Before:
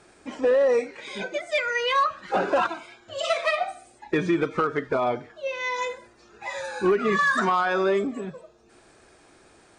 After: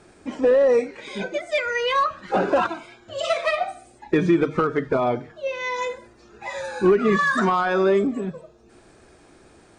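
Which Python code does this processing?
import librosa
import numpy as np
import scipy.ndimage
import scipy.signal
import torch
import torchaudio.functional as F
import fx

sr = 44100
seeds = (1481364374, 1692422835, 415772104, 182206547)

y = fx.low_shelf(x, sr, hz=400.0, db=8.5)
y = fx.hum_notches(y, sr, base_hz=50, count=3)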